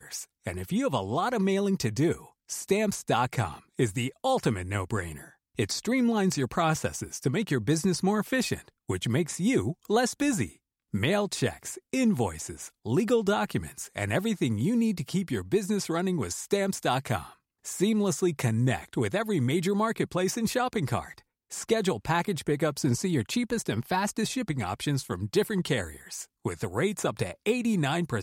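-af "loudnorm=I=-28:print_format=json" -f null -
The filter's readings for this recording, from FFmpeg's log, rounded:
"input_i" : "-28.5",
"input_tp" : "-12.1",
"input_lra" : "1.6",
"input_thresh" : "-38.7",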